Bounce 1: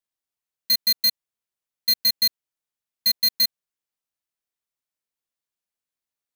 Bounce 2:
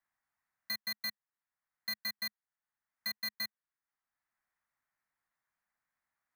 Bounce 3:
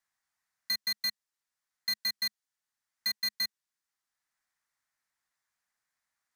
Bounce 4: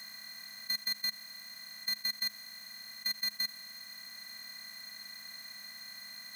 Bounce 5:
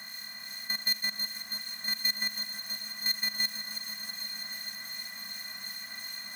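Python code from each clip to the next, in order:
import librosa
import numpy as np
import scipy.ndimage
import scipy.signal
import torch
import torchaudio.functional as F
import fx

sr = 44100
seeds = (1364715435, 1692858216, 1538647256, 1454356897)

y1 = fx.curve_eq(x, sr, hz=(210.0, 450.0, 770.0, 1900.0, 2900.0), db=(0, -8, 5, 9, -10))
y1 = fx.band_squash(y1, sr, depth_pct=40)
y1 = y1 * librosa.db_to_amplitude(-9.0)
y2 = fx.peak_eq(y1, sr, hz=5900.0, db=10.5, octaves=2.3)
y2 = y2 * librosa.db_to_amplitude(-1.5)
y3 = fx.bin_compress(y2, sr, power=0.2)
y3 = y3 * librosa.db_to_amplitude(-4.0)
y4 = fx.harmonic_tremolo(y3, sr, hz=2.7, depth_pct=50, crossover_hz=2000.0)
y4 = fx.echo_alternate(y4, sr, ms=162, hz=2200.0, feedback_pct=90, wet_db=-6)
y4 = y4 * librosa.db_to_amplitude(7.5)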